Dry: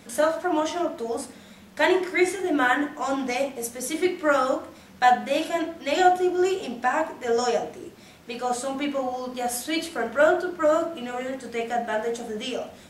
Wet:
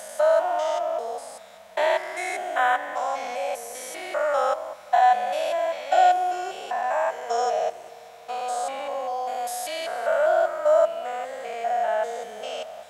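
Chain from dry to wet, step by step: stepped spectrum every 0.2 s; resonant low shelf 450 Hz -12.5 dB, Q 3; reverb RT60 5.9 s, pre-delay 38 ms, DRR 19 dB

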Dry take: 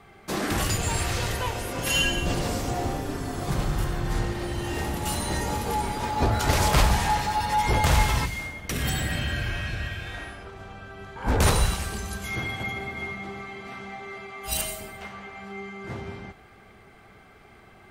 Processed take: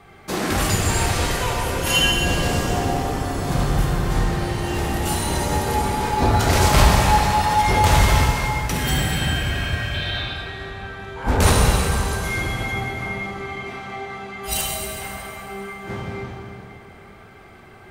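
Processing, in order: 9.94–10.36 synth low-pass 3900 Hz, resonance Q 6.9; plate-style reverb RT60 3.2 s, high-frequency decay 0.7×, DRR -0.5 dB; gain +3 dB

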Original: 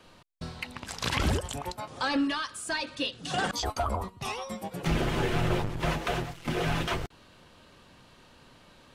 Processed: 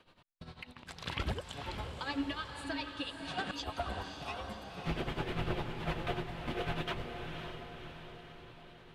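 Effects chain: tremolo 10 Hz, depth 78%; resonant high shelf 4700 Hz -6.5 dB, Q 1.5; diffused feedback echo 0.545 s, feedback 56%, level -6 dB; gain -6 dB

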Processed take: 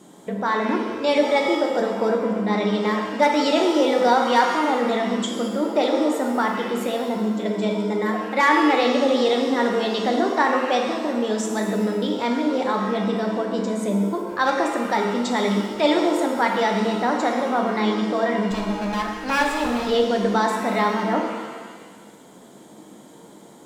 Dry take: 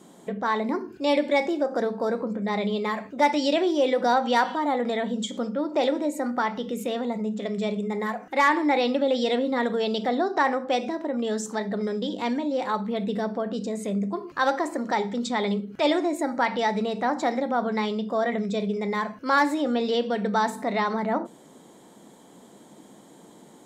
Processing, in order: 18.51–19.87 minimum comb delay 1.2 ms; shimmer reverb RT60 1.4 s, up +7 st, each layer -8 dB, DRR 2.5 dB; gain +2 dB

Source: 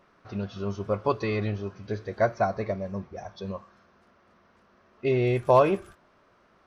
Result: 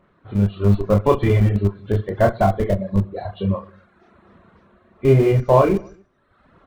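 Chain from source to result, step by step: nonlinear frequency compression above 2000 Hz 1.5:1; on a send: reverse bouncing-ball echo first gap 30 ms, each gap 1.3×, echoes 5; on the sum: reverb removal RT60 0.89 s; in parallel at -8 dB: Schmitt trigger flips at -24.5 dBFS; on the sum: low shelf 340 Hz +10 dB; AGC gain up to 9 dB; gain -2 dB

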